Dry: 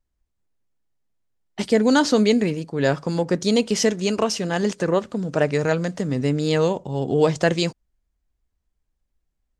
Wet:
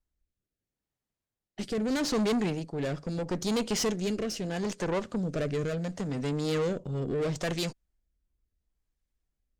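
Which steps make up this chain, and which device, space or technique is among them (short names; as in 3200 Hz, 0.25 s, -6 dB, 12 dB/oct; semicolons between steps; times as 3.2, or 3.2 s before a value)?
overdriven rotary cabinet (tube stage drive 23 dB, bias 0.45; rotary speaker horn 0.75 Hz); gain -1 dB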